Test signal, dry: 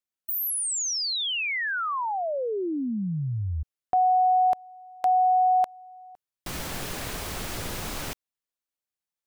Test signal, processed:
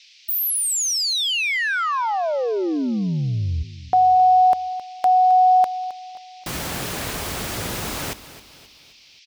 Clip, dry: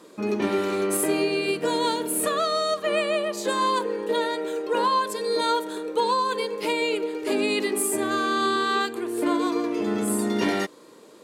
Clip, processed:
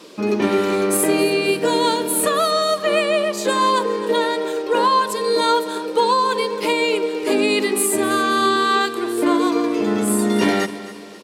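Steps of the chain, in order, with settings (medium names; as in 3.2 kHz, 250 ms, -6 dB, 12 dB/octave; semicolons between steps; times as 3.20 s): high-pass 50 Hz; band noise 2.2–5.6 kHz -57 dBFS; on a send: feedback delay 265 ms, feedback 44%, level -15.5 dB; on the sum: trim +6 dB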